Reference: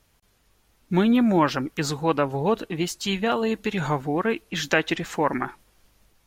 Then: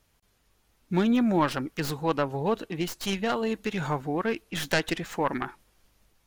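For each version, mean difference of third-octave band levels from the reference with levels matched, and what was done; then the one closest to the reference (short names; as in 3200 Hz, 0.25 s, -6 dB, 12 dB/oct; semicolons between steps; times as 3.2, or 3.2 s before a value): 1.5 dB: tracing distortion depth 0.14 ms; gain -4 dB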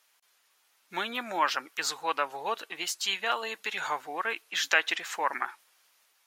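9.5 dB: HPF 1000 Hz 12 dB/oct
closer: first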